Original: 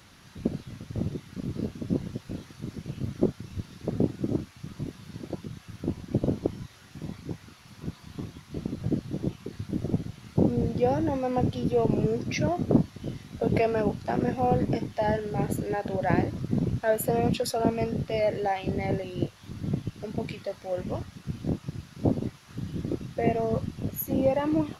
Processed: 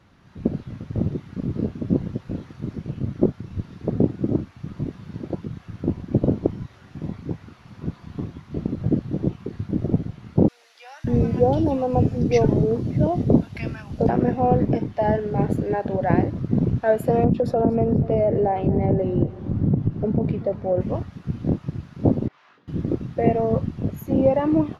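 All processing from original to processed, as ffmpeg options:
-filter_complex "[0:a]asettb=1/sr,asplit=3[s0][s1][s2];[s0]atrim=end=10.484[s3];[s1]atrim=start=10.48:end=14.09,asetpts=PTS-STARTPTS,afade=t=in:d=0.004:c=qsin,afade=t=out:st=3.606:d=0.004:c=qsin,bass=f=250:g=3,treble=f=4000:g=7,acrossover=split=190|1300[s4][s5][s6];[s4]adelay=560[s7];[s5]adelay=590[s8];[s7][s8][s6]amix=inputs=3:normalize=0,atrim=end_sample=159201[s9];[s2]atrim=start=14.086[s10];[s3][s9]acrossfade=d=0.004:c1=hsin:c2=qsin[s11];[s11][s10]acrossfade=d=0.004:c1=qsin:c2=hsin,asettb=1/sr,asplit=3[s12][s13][s14];[s12]atrim=end=17.244[s15];[s13]atrim=start=17.24:end=20.81,asetpts=PTS-STARTPTS,afade=t=in:d=0.004:c=qsin,afade=t=out:st=3.566:d=0.004:c=qsin,tiltshelf=f=1200:g=9,acompressor=threshold=0.0708:ratio=3:attack=3.2:release=140:knee=1:detection=peak,aecho=1:1:240|480|720|960:0.126|0.0667|0.0354|0.0187,atrim=end_sample=157437[s16];[s14]atrim=start=20.806[s17];[s15][s16]acrossfade=d=0.004:c1=hsin:c2=qsin[s18];[s18][s17]acrossfade=d=0.004:c1=qsin:c2=hsin,asettb=1/sr,asplit=3[s19][s20][s21];[s19]atrim=end=22.284[s22];[s20]atrim=start=22.28:end=22.68,asetpts=PTS-STARTPTS,afade=t=in:d=0.004:c=qsin,afade=t=out:st=0.396:d=0.004:c=qsin,acompressor=threshold=0.00398:ratio=2.5:attack=3.2:release=140:knee=1:detection=peak,highpass=740,lowpass=4000,asplit=2[s23][s24];[s24]adelay=21,volume=0.562[s25];[s23][s25]amix=inputs=2:normalize=0,atrim=end_sample=17640[s26];[s21]atrim=start=22.676[s27];[s22][s26]acrossfade=d=0.004:c1=hsin:c2=qsin[s28];[s28][s27]acrossfade=d=0.004:c1=qsin:c2=hsin,lowpass=f=1100:p=1,dynaudnorm=f=250:g=3:m=2.24"

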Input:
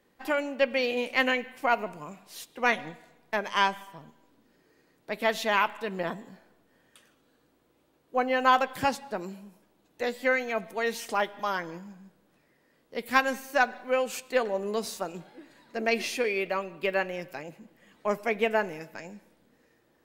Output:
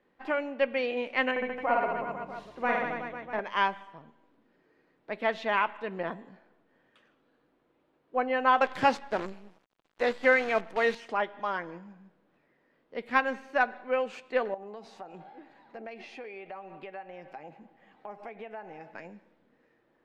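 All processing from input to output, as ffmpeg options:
-filter_complex "[0:a]asettb=1/sr,asplit=3[s0][s1][s2];[s0]atrim=end=1.314[s3];[s1]atrim=start=1.31:end=3.4,asetpts=PTS-STARTPTS,afade=t=in:d=0.004:c=qsin,afade=t=out:st=2.086:d=0.004:c=qsin,equalizer=f=4300:w=0.36:g=-8,aeval=exprs='val(0)+0.000891*(sin(2*PI*60*n/s)+sin(2*PI*2*60*n/s)/2+sin(2*PI*3*60*n/s)/3+sin(2*PI*4*60*n/s)/4+sin(2*PI*5*60*n/s)/5)':c=same,aecho=1:1:50|110|182|268.4|372.1|496.5|645.8:0.794|0.631|0.501|0.398|0.316|0.251|0.2,atrim=end_sample=92169[s4];[s2]atrim=start=3.396[s5];[s3][s4]acrossfade=d=0.004:c1=hsin:c2=qsin[s6];[s6][s5]acrossfade=d=0.004:c1=qsin:c2=hsin,asettb=1/sr,asplit=3[s7][s8][s9];[s7]atrim=end=8.614[s10];[s8]atrim=start=8.61:end=10.95,asetpts=PTS-STARTPTS,afade=t=in:d=0.004:c=qsin,afade=t=out:st=2.336:d=0.004:c=qsin,bass=f=250:g=-2,treble=f=4000:g=7,acontrast=28,acrusher=bits=6:dc=4:mix=0:aa=0.000001[s11];[s9]atrim=start=10.946[s12];[s10][s11]acrossfade=d=0.004:c1=hsin:c2=qsin[s13];[s13][s12]acrossfade=d=0.004:c1=qsin:c2=hsin,asettb=1/sr,asplit=3[s14][s15][s16];[s14]atrim=end=14.544[s17];[s15]atrim=start=14.54:end=18.94,asetpts=PTS-STARTPTS,afade=t=in:d=0.004:c=qsin,afade=t=out:st=4.396:d=0.004:c=qsin,equalizer=f=790:t=o:w=0.22:g=15,acompressor=threshold=0.0126:ratio=5:attack=3.2:release=140:knee=1:detection=peak[s18];[s16]atrim=start=18.936[s19];[s17][s18]acrossfade=d=0.004:c1=hsin:c2=qsin[s20];[s20][s19]acrossfade=d=0.004:c1=qsin:c2=hsin,lowpass=2600,equalizer=f=64:t=o:w=2.3:g=-7.5,volume=0.841"

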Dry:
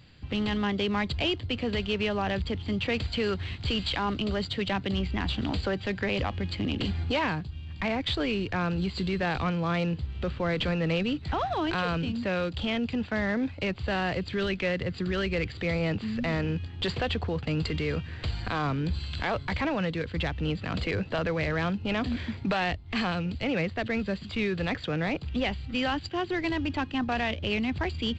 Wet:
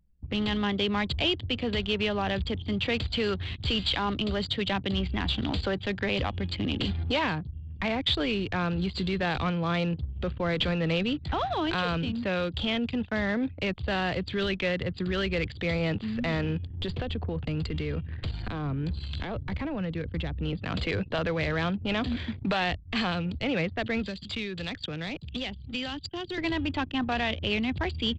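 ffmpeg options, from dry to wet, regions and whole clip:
-filter_complex "[0:a]asettb=1/sr,asplit=3[s0][s1][s2];[s0]atrim=end=16.704[s3];[s1]atrim=start=16.7:end=20.53,asetpts=PTS-STARTPTS,afade=t=in:d=0.004:c=qsin,afade=t=out:st=3.826:d=0.004:c=qsin,lowshelf=f=72:g=9.5,acrossover=split=120|470[s4][s5][s6];[s4]acompressor=threshold=0.02:ratio=4[s7];[s5]acompressor=threshold=0.0282:ratio=4[s8];[s6]acompressor=threshold=0.0112:ratio=4[s9];[s7][s8][s9]amix=inputs=3:normalize=0[s10];[s2]atrim=start=20.526[s11];[s3][s10]acrossfade=d=0.004:c1=hsin:c2=qsin[s12];[s12][s11]acrossfade=d=0.004:c1=qsin:c2=hsin,asettb=1/sr,asplit=3[s13][s14][s15];[s13]atrim=end=24.034[s16];[s14]atrim=start=24.03:end=26.38,asetpts=PTS-STARTPTS,afade=t=in:d=0.004:c=qsin,afade=t=out:st=2.346:d=0.004:c=qsin,acrossover=split=87|340|2500[s17][s18][s19][s20];[s17]acompressor=threshold=0.00316:ratio=3[s21];[s18]acompressor=threshold=0.0126:ratio=3[s22];[s19]acompressor=threshold=0.00708:ratio=3[s23];[s20]acompressor=threshold=0.00447:ratio=3[s24];[s21][s22][s23][s24]amix=inputs=4:normalize=0,highshelf=f=3600:g=12[s25];[s15]atrim=start=26.376[s26];[s16][s25]acrossfade=d=0.004:c1=hsin:c2=qsin[s27];[s27][s26]acrossfade=d=0.004:c1=qsin:c2=hsin,adynamicequalizer=threshold=0.00316:dfrequency=3500:dqfactor=3.6:tfrequency=3500:tqfactor=3.6:attack=5:release=100:ratio=0.375:range=3:mode=boostabove:tftype=bell,anlmdn=0.631"

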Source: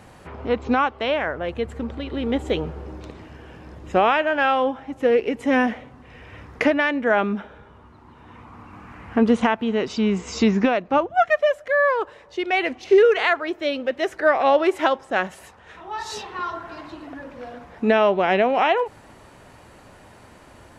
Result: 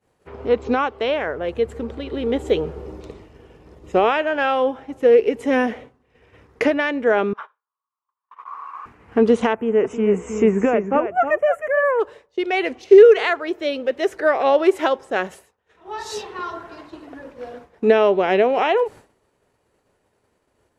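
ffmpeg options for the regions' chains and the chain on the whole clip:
-filter_complex "[0:a]asettb=1/sr,asplit=3[s0][s1][s2];[s0]atrim=end=2.764[s3];[s1]atrim=start=2.76:end=4.05,asetpts=PTS-STARTPTS,afade=t=in:d=0.004:c=qsin,afade=t=out:st=1.286:d=0.004:c=qsin,bandreject=f=1600:w=9.9,aeval=exprs='val(0)+0.00562*(sin(2*PI*50*n/s)+sin(2*PI*2*50*n/s)/2+sin(2*PI*3*50*n/s)/3+sin(2*PI*4*50*n/s)/4+sin(2*PI*5*50*n/s)/5)':c=same[s4];[s2]atrim=start=4.046[s5];[s3][s4]acrossfade=d=0.004:c1=hsin:c2=qsin[s6];[s6][s5]acrossfade=d=0.004:c1=qsin:c2=hsin,asettb=1/sr,asplit=3[s7][s8][s9];[s7]atrim=end=7.334[s10];[s8]atrim=start=7.33:end=8.86,asetpts=PTS-STARTPTS,afade=t=in:d=0.004:c=qsin,afade=t=out:st=1.526:d=0.004:c=qsin,highpass=f=1100:t=q:w=9.8,highshelf=f=5000:g=-9,agate=range=0.2:threshold=0.0141:ratio=16:release=100:detection=peak[s11];[s9]atrim=start=8.856[s12];[s10][s11]acrossfade=d=0.004:c1=hsin:c2=qsin[s13];[s13][s12]acrossfade=d=0.004:c1=qsin:c2=hsin,asettb=1/sr,asplit=3[s14][s15][s16];[s14]atrim=end=9.534[s17];[s15]atrim=start=9.53:end=12,asetpts=PTS-STARTPTS,afade=t=in:d=0.004:c=qsin,afade=t=out:st=2.466:d=0.004:c=qsin,asuperstop=centerf=4300:order=4:qfactor=0.85,aecho=1:1:314:0.376,atrim=end_sample=108927[s18];[s16]atrim=start=11.996[s19];[s17][s18]acrossfade=d=0.004:c1=hsin:c2=qsin[s20];[s20][s19]acrossfade=d=0.004:c1=qsin:c2=hsin,equalizer=f=430:w=2.5:g=9.5,agate=range=0.0224:threshold=0.0251:ratio=3:detection=peak,highshelf=f=5500:g=6,volume=0.794"

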